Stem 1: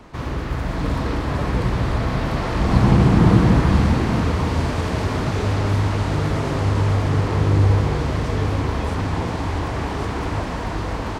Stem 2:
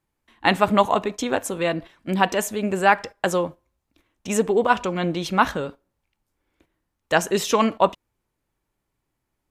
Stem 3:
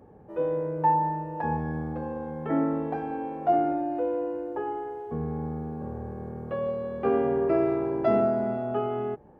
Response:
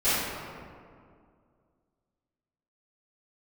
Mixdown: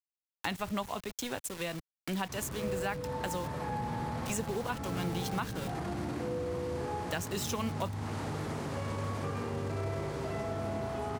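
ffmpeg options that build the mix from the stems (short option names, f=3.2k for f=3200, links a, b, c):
-filter_complex "[0:a]alimiter=limit=-13dB:level=0:latency=1:release=12,highpass=160,acrossover=split=1900|7900[a][b][c];[a]acompressor=threshold=-25dB:ratio=4[d];[b]acompressor=threshold=-49dB:ratio=4[e];[c]acompressor=threshold=-55dB:ratio=4[f];[d][e][f]amix=inputs=3:normalize=0,adelay=2150,volume=-5dB[g];[1:a]aeval=exprs='val(0)*gte(abs(val(0)),0.0335)':c=same,volume=-4.5dB[h];[2:a]lowshelf=f=380:g=-10.5,acompressor=threshold=-28dB:ratio=6,adelay=2200,volume=-10dB,asplit=2[i][j];[j]volume=-3.5dB[k];[3:a]atrim=start_sample=2205[l];[k][l]afir=irnorm=-1:irlink=0[m];[g][h][i][m]amix=inputs=4:normalize=0,highshelf=f=2.4k:g=10,acrossover=split=140[n][o];[o]acompressor=threshold=-38dB:ratio=3[p];[n][p]amix=inputs=2:normalize=0"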